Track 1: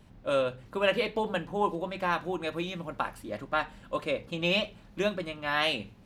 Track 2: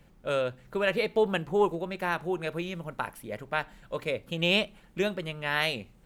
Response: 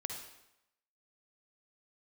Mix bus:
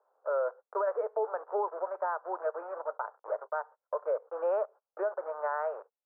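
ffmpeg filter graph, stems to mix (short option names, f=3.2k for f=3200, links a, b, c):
-filter_complex "[0:a]acompressor=threshold=-32dB:ratio=6,volume=-5.5dB[a];[1:a]aeval=exprs='val(0)*gte(abs(val(0)),0.0158)':c=same,volume=-0.5dB,asplit=2[b][c];[c]apad=whole_len=266917[d];[a][d]sidechaingate=range=-33dB:threshold=-45dB:ratio=16:detection=peak[e];[e][b]amix=inputs=2:normalize=0,dynaudnorm=f=180:g=5:m=6dB,asuperpass=centerf=800:order=12:qfactor=0.82,alimiter=limit=-22.5dB:level=0:latency=1:release=272"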